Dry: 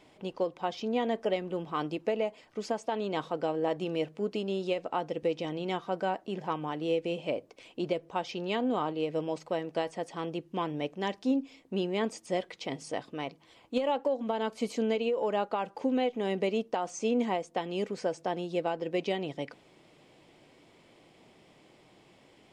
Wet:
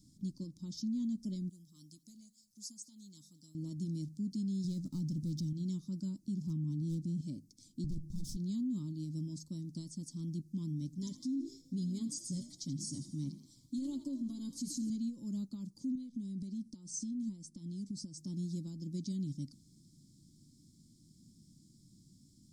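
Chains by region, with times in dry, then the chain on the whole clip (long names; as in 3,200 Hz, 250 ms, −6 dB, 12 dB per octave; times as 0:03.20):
0:01.49–0:03.55: first-order pre-emphasis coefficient 0.9 + single-tap delay 211 ms −21 dB
0:04.64–0:05.53: parametric band 160 Hz +7 dB 0.89 octaves + leveller curve on the samples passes 1 + one half of a high-frequency compander encoder only
0:06.47–0:07.21: parametric band 170 Hz +9.5 dB 2.1 octaves + gain into a clipping stage and back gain 18 dB
0:07.84–0:08.37: lower of the sound and its delayed copy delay 6 ms + low-shelf EQ 460 Hz +11 dB
0:10.87–0:14.90: comb filter 7.2 ms, depth 80% + echo with shifted repeats 82 ms, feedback 56%, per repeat +58 Hz, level −12.5 dB
0:15.95–0:18.17: downward compressor 4 to 1, threshold −35 dBFS + notch filter 6,800 Hz, Q 9 + bad sample-rate conversion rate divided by 2×, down none, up filtered
whole clip: inverse Chebyshev band-stop filter 430–2,900 Hz, stop band 40 dB; brickwall limiter −35.5 dBFS; level +4.5 dB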